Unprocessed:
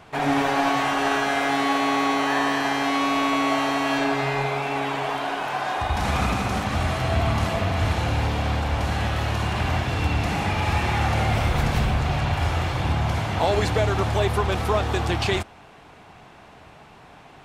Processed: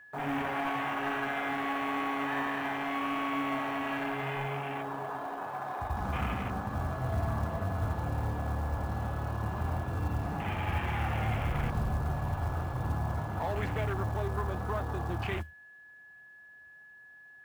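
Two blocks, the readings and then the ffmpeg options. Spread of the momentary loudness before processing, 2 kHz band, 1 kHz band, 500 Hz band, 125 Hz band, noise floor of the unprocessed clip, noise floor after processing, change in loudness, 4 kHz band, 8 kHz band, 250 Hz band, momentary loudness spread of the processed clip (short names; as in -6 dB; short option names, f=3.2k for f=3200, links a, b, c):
4 LU, -10.5 dB, -10.5 dB, -11.5 dB, -8.5 dB, -48 dBFS, -54 dBFS, -10.0 dB, -16.5 dB, -18.5 dB, -10.0 dB, 7 LU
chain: -filter_complex "[0:a]flanger=delay=6.9:depth=6.1:regen=82:speed=0.87:shape=sinusoidal,afwtdn=0.0251,acrossover=split=270|830|2800[a][b][c][d];[b]asoftclip=type=tanh:threshold=-34.5dB[e];[a][e][c][d]amix=inputs=4:normalize=0,aeval=exprs='val(0)+0.00447*sin(2*PI*1700*n/s)':c=same,acrusher=bits=7:mode=log:mix=0:aa=0.000001,volume=-4dB"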